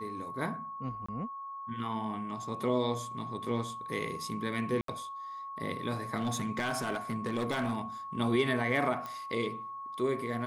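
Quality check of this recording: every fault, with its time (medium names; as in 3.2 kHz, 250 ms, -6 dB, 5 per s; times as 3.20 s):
whine 1.1 kHz -39 dBFS
1.06–1.08 s: dropout 25 ms
4.81–4.88 s: dropout 73 ms
6.17–7.81 s: clipped -27 dBFS
9.06 s: pop -26 dBFS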